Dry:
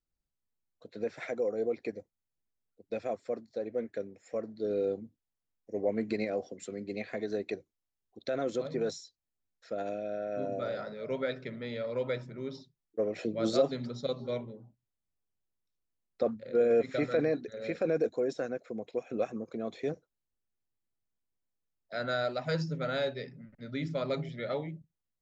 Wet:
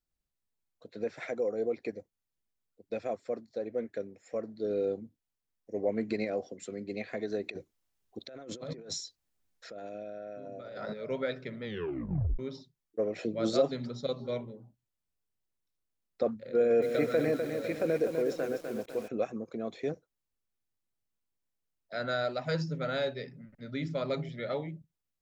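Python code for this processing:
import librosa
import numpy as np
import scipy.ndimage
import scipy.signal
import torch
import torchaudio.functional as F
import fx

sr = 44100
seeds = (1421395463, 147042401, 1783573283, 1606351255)

y = fx.over_compress(x, sr, threshold_db=-43.0, ratio=-1.0, at=(7.43, 10.92), fade=0.02)
y = fx.echo_crushed(y, sr, ms=251, feedback_pct=55, bits=8, wet_db=-6, at=(16.57, 19.12))
y = fx.edit(y, sr, fx.tape_stop(start_s=11.64, length_s=0.75), tone=tone)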